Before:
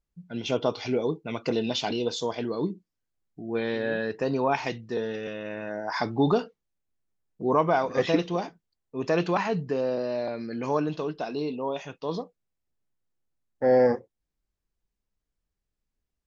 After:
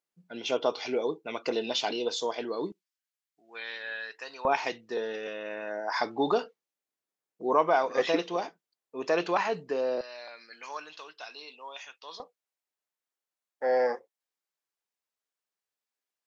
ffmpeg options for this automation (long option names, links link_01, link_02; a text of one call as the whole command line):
ffmpeg -i in.wav -af "asetnsamples=nb_out_samples=441:pad=0,asendcmd='2.72 highpass f 1500;4.45 highpass f 400;10.01 highpass f 1500;12.2 highpass f 660',highpass=390" out.wav